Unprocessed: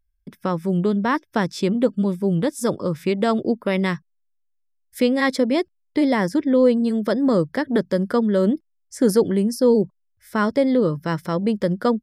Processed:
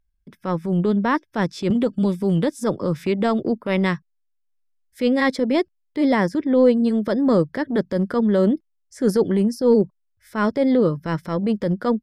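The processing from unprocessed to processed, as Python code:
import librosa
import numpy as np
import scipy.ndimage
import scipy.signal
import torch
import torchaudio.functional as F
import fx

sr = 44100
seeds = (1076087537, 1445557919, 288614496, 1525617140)

y = fx.high_shelf(x, sr, hz=7300.0, db=-9.0)
y = fx.transient(y, sr, attack_db=-8, sustain_db=-3)
y = fx.band_squash(y, sr, depth_pct=70, at=(1.7, 3.58))
y = F.gain(torch.from_numpy(y), 2.0).numpy()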